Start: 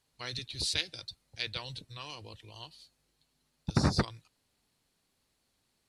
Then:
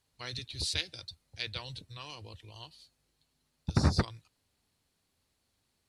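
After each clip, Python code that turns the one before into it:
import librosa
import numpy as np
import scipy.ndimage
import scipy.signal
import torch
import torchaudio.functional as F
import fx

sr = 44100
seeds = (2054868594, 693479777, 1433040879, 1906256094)

y = fx.peak_eq(x, sr, hz=81.0, db=8.0, octaves=0.63)
y = F.gain(torch.from_numpy(y), -1.5).numpy()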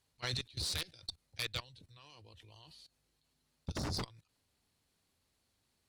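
y = 10.0 ** (-25.0 / 20.0) * (np.abs((x / 10.0 ** (-25.0 / 20.0) + 3.0) % 4.0 - 2.0) - 1.0)
y = fx.level_steps(y, sr, step_db=21)
y = fx.cheby_harmonics(y, sr, harmonics=(4,), levels_db=(-18,), full_scale_db=-26.5)
y = F.gain(torch.from_numpy(y), 5.0).numpy()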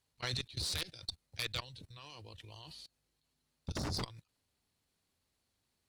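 y = fx.level_steps(x, sr, step_db=15)
y = F.gain(torch.from_numpy(y), 8.0).numpy()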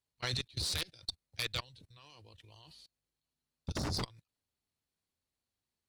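y = fx.upward_expand(x, sr, threshold_db=-59.0, expansion=1.5)
y = F.gain(torch.from_numpy(y), 2.5).numpy()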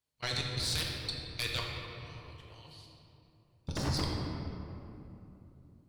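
y = fx.room_shoebox(x, sr, seeds[0], volume_m3=130.0, walls='hard', distance_m=0.48)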